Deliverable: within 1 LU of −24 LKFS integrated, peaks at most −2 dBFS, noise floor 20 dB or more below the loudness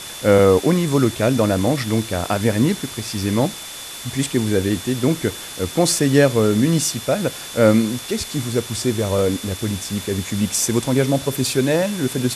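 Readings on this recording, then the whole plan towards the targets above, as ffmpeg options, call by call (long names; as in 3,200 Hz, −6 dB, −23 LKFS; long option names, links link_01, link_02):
interfering tone 3,500 Hz; level of the tone −37 dBFS; background noise floor −33 dBFS; target noise floor −39 dBFS; integrated loudness −19.0 LKFS; sample peak −2.0 dBFS; target loudness −24.0 LKFS
→ -af "bandreject=frequency=3500:width=30"
-af "afftdn=noise_reduction=6:noise_floor=-33"
-af "volume=-5dB"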